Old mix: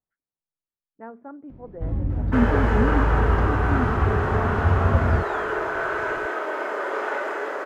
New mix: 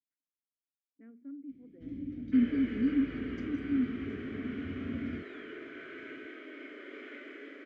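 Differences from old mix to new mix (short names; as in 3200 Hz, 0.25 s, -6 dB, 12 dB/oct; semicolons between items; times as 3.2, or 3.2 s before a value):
first sound: remove air absorption 350 m; master: add vowel filter i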